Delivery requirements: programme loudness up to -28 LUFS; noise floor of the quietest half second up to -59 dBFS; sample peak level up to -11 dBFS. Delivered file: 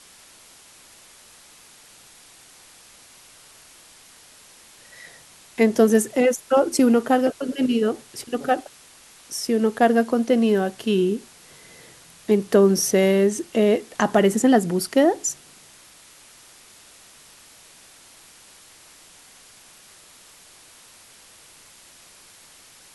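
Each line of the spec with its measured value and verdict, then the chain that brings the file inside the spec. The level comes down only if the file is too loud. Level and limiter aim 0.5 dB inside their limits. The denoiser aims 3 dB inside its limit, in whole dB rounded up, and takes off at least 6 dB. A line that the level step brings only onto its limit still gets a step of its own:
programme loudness -20.5 LUFS: fail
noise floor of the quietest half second -49 dBFS: fail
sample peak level -4.0 dBFS: fail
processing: denoiser 6 dB, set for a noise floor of -49 dBFS; gain -8 dB

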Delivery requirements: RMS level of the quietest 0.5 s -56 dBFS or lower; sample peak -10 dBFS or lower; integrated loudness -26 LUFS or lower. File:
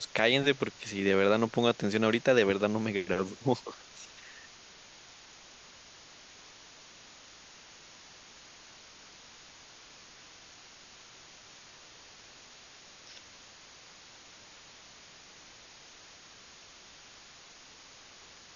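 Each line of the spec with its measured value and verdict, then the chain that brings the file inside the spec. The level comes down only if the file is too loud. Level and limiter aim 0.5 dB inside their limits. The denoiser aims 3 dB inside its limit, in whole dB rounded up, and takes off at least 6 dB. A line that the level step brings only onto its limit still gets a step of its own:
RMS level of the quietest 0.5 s -54 dBFS: fail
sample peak -9.5 dBFS: fail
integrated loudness -28.0 LUFS: OK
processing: denoiser 6 dB, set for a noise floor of -54 dBFS; limiter -10.5 dBFS

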